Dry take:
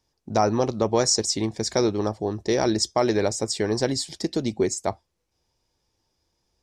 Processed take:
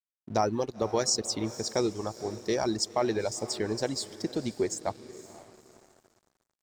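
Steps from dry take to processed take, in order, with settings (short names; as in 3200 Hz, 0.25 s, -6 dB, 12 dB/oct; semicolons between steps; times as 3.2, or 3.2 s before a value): reverb removal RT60 1.7 s; diffused feedback echo 0.509 s, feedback 47%, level -14 dB; crossover distortion -48.5 dBFS; gain -5 dB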